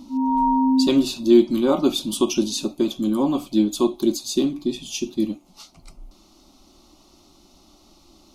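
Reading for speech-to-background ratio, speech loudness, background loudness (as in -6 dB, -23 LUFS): -1.0 dB, -21.5 LUFS, -20.5 LUFS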